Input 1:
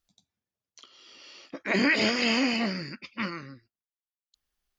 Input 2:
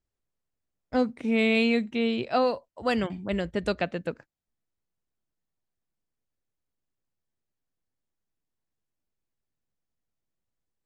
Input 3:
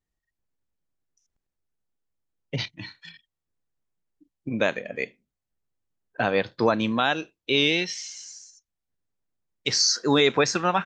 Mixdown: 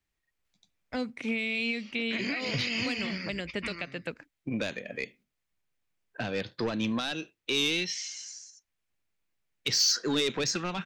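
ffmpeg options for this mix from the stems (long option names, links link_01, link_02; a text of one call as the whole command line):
ffmpeg -i stem1.wav -i stem2.wav -i stem3.wav -filter_complex "[0:a]adelay=450,volume=-5dB[link_01];[1:a]lowshelf=frequency=490:gain=-6.5,alimiter=limit=-19.5dB:level=0:latency=1:release=169,volume=0.5dB[link_02];[2:a]asoftclip=type=tanh:threshold=-17.5dB,volume=-2.5dB[link_03];[link_01][link_02]amix=inputs=2:normalize=0,equalizer=frequency=2300:width=2.6:gain=5.5,alimiter=limit=-20dB:level=0:latency=1:release=269,volume=0dB[link_04];[link_03][link_04]amix=inputs=2:normalize=0,equalizer=frequency=2300:width=0.64:gain=5,acrossover=split=400|3000[link_05][link_06][link_07];[link_06]acompressor=threshold=-37dB:ratio=6[link_08];[link_05][link_08][link_07]amix=inputs=3:normalize=0" out.wav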